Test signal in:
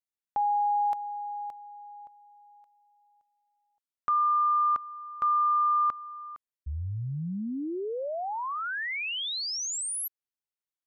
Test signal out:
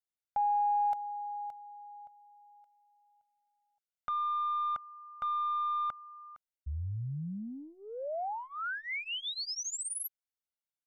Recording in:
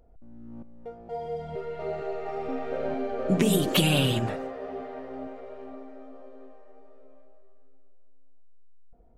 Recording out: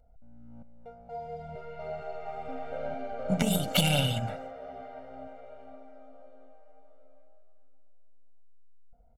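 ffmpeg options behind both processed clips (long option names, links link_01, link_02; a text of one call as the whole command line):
ffmpeg -i in.wav -af "aeval=exprs='0.376*(cos(1*acos(clip(val(0)/0.376,-1,1)))-cos(1*PI/2))+0.0075*(cos(2*acos(clip(val(0)/0.376,-1,1)))-cos(2*PI/2))+0.075*(cos(3*acos(clip(val(0)/0.376,-1,1)))-cos(3*PI/2))':channel_layout=same,aecho=1:1:1.4:0.91" out.wav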